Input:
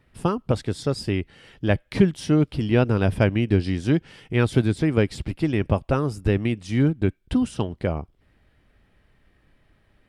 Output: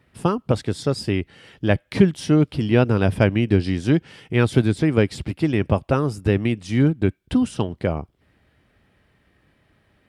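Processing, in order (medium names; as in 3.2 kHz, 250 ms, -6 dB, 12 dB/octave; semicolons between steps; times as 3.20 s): high-pass 73 Hz; trim +2.5 dB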